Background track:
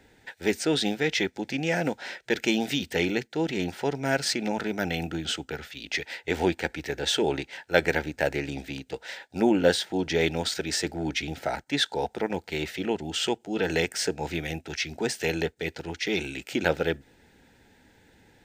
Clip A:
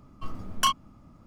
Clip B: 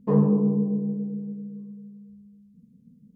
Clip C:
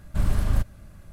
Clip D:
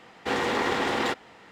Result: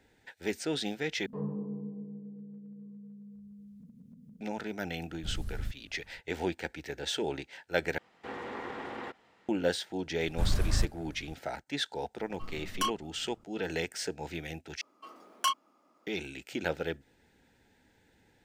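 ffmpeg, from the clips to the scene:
ffmpeg -i bed.wav -i cue0.wav -i cue1.wav -i cue2.wav -i cue3.wav -filter_complex "[3:a]asplit=2[link_01][link_02];[1:a]asplit=2[link_03][link_04];[0:a]volume=-8dB[link_05];[2:a]acompressor=mode=upward:threshold=-24dB:ratio=4:attack=0.15:release=406:knee=2.83:detection=peak[link_06];[link_01]acrossover=split=400|3000[link_07][link_08][link_09];[link_08]acompressor=threshold=-52dB:ratio=6:attack=3.2:release=140:knee=2.83:detection=peak[link_10];[link_07][link_10][link_09]amix=inputs=3:normalize=0[link_11];[4:a]acrossover=split=2600[link_12][link_13];[link_13]acompressor=threshold=-47dB:ratio=4:attack=1:release=60[link_14];[link_12][link_14]amix=inputs=2:normalize=0[link_15];[link_04]highpass=frequency=350:width=0.5412,highpass=frequency=350:width=1.3066[link_16];[link_05]asplit=4[link_17][link_18][link_19][link_20];[link_17]atrim=end=1.264[link_21];[link_06]atrim=end=3.15,asetpts=PTS-STARTPTS,volume=-16.5dB[link_22];[link_18]atrim=start=4.406:end=7.984[link_23];[link_15]atrim=end=1.51,asetpts=PTS-STARTPTS,volume=-13.5dB[link_24];[link_19]atrim=start=9.486:end=14.814[link_25];[link_16]atrim=end=1.26,asetpts=PTS-STARTPTS,volume=-5dB[link_26];[link_20]atrim=start=16.066[link_27];[link_11]atrim=end=1.12,asetpts=PTS-STARTPTS,volume=-14.5dB,afade=type=in:duration=0.004:curve=hsin,afade=type=out:start_time=1.116:duration=0.004:curve=hsin,adelay=224469S[link_28];[link_02]atrim=end=1.12,asetpts=PTS-STARTPTS,volume=-5.5dB,afade=type=in:duration=0.004:curve=hsin,afade=type=out:start_time=1.116:duration=0.004:curve=hsin,adelay=10230[link_29];[link_03]atrim=end=1.26,asetpts=PTS-STARTPTS,volume=-7.5dB,afade=type=in:duration=0.004:curve=hsin,afade=type=out:start_time=1.256:duration=0.004:curve=hsin,adelay=12180[link_30];[link_21][link_22]acrossfade=duration=0.004:curve1=hsin:curve2=hsin[link_31];[link_31][link_23]acrossfade=duration=0.004:curve1=hsin:curve2=hsin[link_32];[link_32][link_24]acrossfade=duration=0.004:curve1=hsin:curve2=hsin[link_33];[link_33][link_25]acrossfade=duration=0.004:curve1=hsin:curve2=hsin[link_34];[link_34][link_26]acrossfade=duration=0.004:curve1=hsin:curve2=hsin[link_35];[link_35][link_27]acrossfade=duration=0.004:curve1=hsin:curve2=hsin[link_36];[link_36][link_28][link_29][link_30]amix=inputs=4:normalize=0" out.wav

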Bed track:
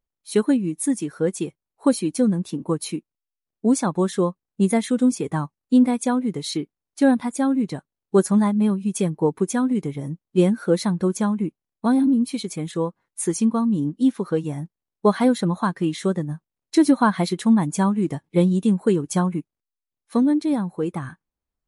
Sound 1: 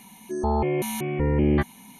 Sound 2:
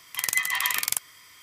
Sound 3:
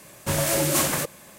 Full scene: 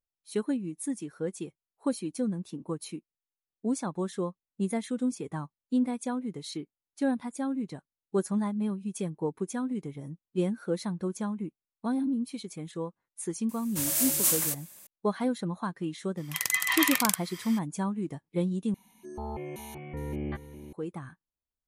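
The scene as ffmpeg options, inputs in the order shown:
ffmpeg -i bed.wav -i cue0.wav -i cue1.wav -i cue2.wav -filter_complex "[0:a]volume=-11dB[link_01];[3:a]crystalizer=i=5:c=0[link_02];[2:a]dynaudnorm=framelen=100:gausssize=3:maxgain=11.5dB[link_03];[1:a]aecho=1:1:410:0.251[link_04];[link_01]asplit=2[link_05][link_06];[link_05]atrim=end=18.744[link_07];[link_04]atrim=end=1.99,asetpts=PTS-STARTPTS,volume=-13.5dB[link_08];[link_06]atrim=start=20.726[link_09];[link_02]atrim=end=1.38,asetpts=PTS-STARTPTS,volume=-17dB,afade=type=in:duration=0.004:curve=hsin,afade=type=out:start_time=1.376:duration=0.004:curve=hsin,adelay=13490[link_10];[link_03]atrim=end=1.42,asetpts=PTS-STARTPTS,volume=-5dB,afade=type=in:duration=0.004:curve=hsin,afade=type=out:start_time=1.416:duration=0.004:curve=hsin,adelay=16170[link_11];[link_07][link_08]acrossfade=duration=0.004:curve1=hsin:curve2=hsin[link_12];[link_12][link_09]acrossfade=duration=0.004:curve1=hsin:curve2=hsin[link_13];[link_13][link_10][link_11]amix=inputs=3:normalize=0" out.wav

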